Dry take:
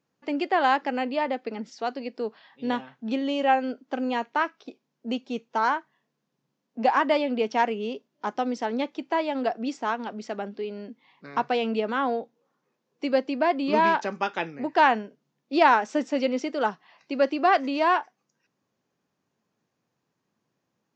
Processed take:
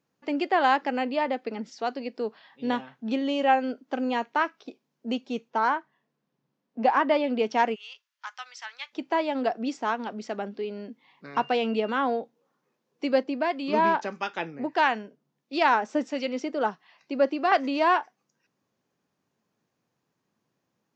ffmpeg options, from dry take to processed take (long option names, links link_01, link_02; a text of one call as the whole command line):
ffmpeg -i in.wav -filter_complex "[0:a]asettb=1/sr,asplit=3[link_01][link_02][link_03];[link_01]atrim=end=5.504[link_04];[link_02]atrim=start=5.5:end=7.24,asetpts=PTS-STARTPTS,afade=type=in:duration=0.004:curve=qsin,afade=type=out:start_time=1.736:duration=0.004:curve=qsin,lowpass=frequency=3100:poles=1[link_05];[link_03]atrim=start=7.236[link_06];[link_04][link_05]acrossfade=duration=0.004:curve1=hsin:curve2=qsin[link_07];[link_07][link_06]acrossfade=duration=0.004:curve1=qsin:curve2=hsin,asplit=3[link_08][link_09][link_10];[link_08]afade=type=out:start_time=7.74:duration=0.02[link_11];[link_09]highpass=frequency=1300:width=0.5412,highpass=frequency=1300:width=1.3066,afade=type=in:start_time=7.74:duration=0.02,afade=type=out:start_time=8.92:duration=0.02[link_12];[link_10]afade=type=in:start_time=8.92:duration=0.02[link_13];[link_11][link_12][link_13]amix=inputs=3:normalize=0,asettb=1/sr,asplit=3[link_14][link_15][link_16];[link_14]atrim=end=11.354[link_17];[link_15]atrim=start=11.35:end=11.98,asetpts=PTS-STARTPTS,afade=type=in:duration=0.004:curve=qsin,afade=type=out:start_time=0.626:duration=0.004:curve=qsin,aeval=exprs='val(0)+0.00447*sin(2*PI*2800*n/s)':channel_layout=same[link_18];[link_16]atrim=start=11.976[link_19];[link_17][link_18]acrossfade=duration=0.004:curve1=hsin:curve2=qsin[link_20];[link_20][link_19]acrossfade=duration=0.004:curve1=qsin:curve2=hsin,asettb=1/sr,asplit=3[link_21][link_22][link_23];[link_21]atrim=end=13.234[link_24];[link_22]atrim=start=13.23:end=17.52,asetpts=PTS-STARTPTS,afade=type=in:duration=0.004:curve=qsin,afade=type=out:start_time=4.286:duration=0.004:curve=qsin,acrossover=split=1400[link_25][link_26];[link_25]aeval=exprs='val(0)*(1-0.5/2+0.5/2*cos(2*PI*1.5*n/s))':channel_layout=same[link_27];[link_26]aeval=exprs='val(0)*(1-0.5/2-0.5/2*cos(2*PI*1.5*n/s))':channel_layout=same[link_28];[link_27][link_28]amix=inputs=2:normalize=0[link_29];[link_23]atrim=start=17.516[link_30];[link_24][link_29]acrossfade=duration=0.004:curve1=hsin:curve2=qsin[link_31];[link_31][link_30]acrossfade=duration=0.004:curve1=qsin:curve2=hsin" out.wav